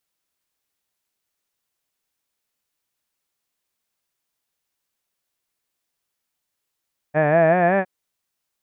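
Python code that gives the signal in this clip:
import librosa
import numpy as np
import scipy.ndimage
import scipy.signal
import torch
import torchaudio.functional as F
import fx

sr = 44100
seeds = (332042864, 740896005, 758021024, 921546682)

y = fx.vowel(sr, seeds[0], length_s=0.71, word='had', hz=146.0, glide_st=5.0, vibrato_hz=5.3, vibrato_st=0.9)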